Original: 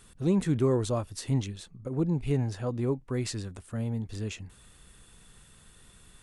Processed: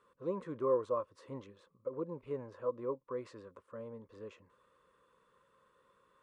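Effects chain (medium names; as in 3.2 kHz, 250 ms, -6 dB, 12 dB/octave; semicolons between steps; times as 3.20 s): two resonant band-passes 750 Hz, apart 0.99 oct; trim +3 dB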